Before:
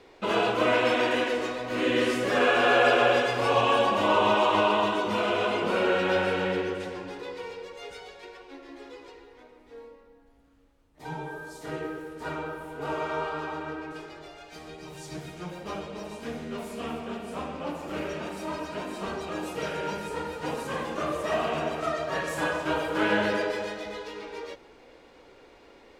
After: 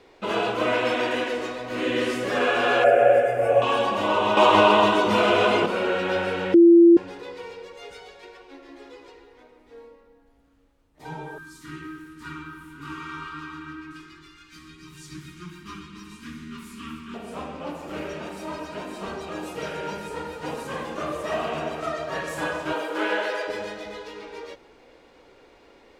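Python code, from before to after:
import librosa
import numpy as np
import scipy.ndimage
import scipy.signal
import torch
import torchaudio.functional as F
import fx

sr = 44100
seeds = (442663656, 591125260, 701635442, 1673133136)

y = fx.curve_eq(x, sr, hz=(130.0, 200.0, 390.0, 640.0, 990.0, 1500.0, 2400.0, 4000.0, 9400.0), db=(0, -7, -2, 12, -17, -1, -4, -25, 0), at=(2.84, 3.62))
y = fx.cheby1_bandstop(y, sr, low_hz=330.0, high_hz=1100.0, order=3, at=(11.38, 17.14))
y = fx.highpass(y, sr, hz=fx.line((22.72, 200.0), (23.47, 490.0)), slope=24, at=(22.72, 23.47), fade=0.02)
y = fx.edit(y, sr, fx.clip_gain(start_s=4.37, length_s=1.29, db=7.0),
    fx.bleep(start_s=6.54, length_s=0.43, hz=340.0, db=-8.5), tone=tone)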